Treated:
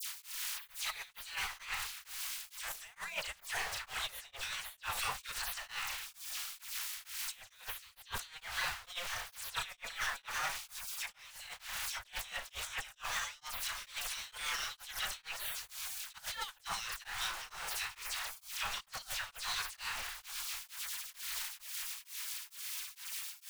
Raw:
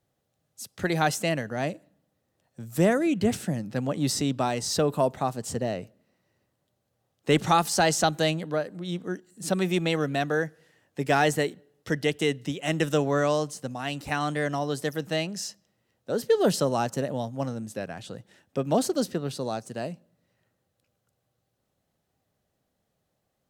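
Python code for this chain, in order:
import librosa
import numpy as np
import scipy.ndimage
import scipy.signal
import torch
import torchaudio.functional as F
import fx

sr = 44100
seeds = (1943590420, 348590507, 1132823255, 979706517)

y = x + 0.5 * 10.0 ** (-34.5 / 20.0) * np.sign(x)
y = fx.doubler(y, sr, ms=35.0, db=-5)
y = fx.spec_gate(y, sr, threshold_db=-20, keep='weak')
y = fx.tone_stack(y, sr, knobs='10-0-10')
y = fx.dispersion(y, sr, late='lows', ms=70.0, hz=2200.0)
y = fx.over_compress(y, sr, threshold_db=-45.0, ratio=-0.5)
y = fx.high_shelf(y, sr, hz=3600.0, db=-9.0)
y = y + 10.0 ** (-18.5 / 20.0) * np.pad(y, (int(696 * sr / 1000.0), 0))[:len(y)]
y = y * np.abs(np.cos(np.pi * 2.2 * np.arange(len(y)) / sr))
y = y * librosa.db_to_amplitude(11.5)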